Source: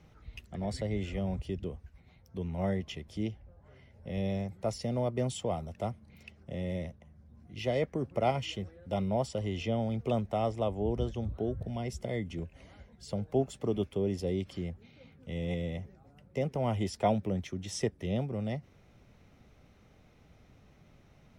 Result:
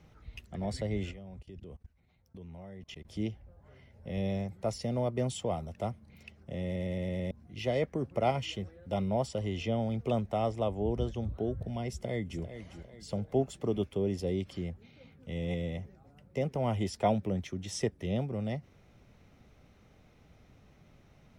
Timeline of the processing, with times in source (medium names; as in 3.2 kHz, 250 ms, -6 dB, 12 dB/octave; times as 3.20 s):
1.11–3.05 s: level held to a coarse grid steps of 23 dB
6.65 s: stutter in place 0.11 s, 6 plays
11.89–12.42 s: echo throw 400 ms, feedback 40%, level -11 dB